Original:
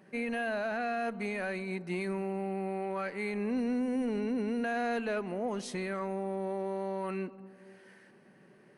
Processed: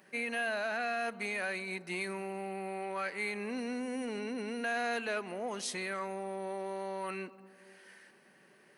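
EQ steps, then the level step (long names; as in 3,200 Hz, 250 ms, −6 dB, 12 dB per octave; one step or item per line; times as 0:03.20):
spectral tilt +3.5 dB per octave
high-shelf EQ 5,400 Hz −5.5 dB
0.0 dB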